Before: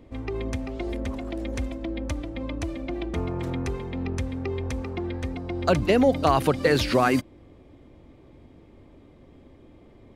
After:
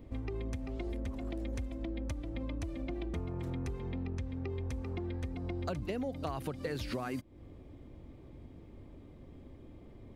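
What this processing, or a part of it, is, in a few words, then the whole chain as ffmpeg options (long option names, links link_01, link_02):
ASMR close-microphone chain: -filter_complex "[0:a]lowshelf=frequency=240:gain=7.5,acompressor=threshold=-29dB:ratio=6,highshelf=frequency=12000:gain=7.5,asettb=1/sr,asplit=3[link_01][link_02][link_03];[link_01]atrim=end=3.804[link_04];[link_02]atrim=start=3.8:end=4.5,asetpts=PTS-STARTPTS,afade=type=in:duration=0.004:curve=qsin,afade=type=out:start_time=0.696:duration=0.004:curve=qsin,lowpass=6100[link_05];[link_03]atrim=start=4.496[link_06];[link_04][link_05]acrossfade=duration=0.004:curve1=hsin:curve2=qsin[link_07];[link_07][link_06]acrossfade=duration=0.004:curve1=qsin:curve2=hsin,volume=-5.5dB"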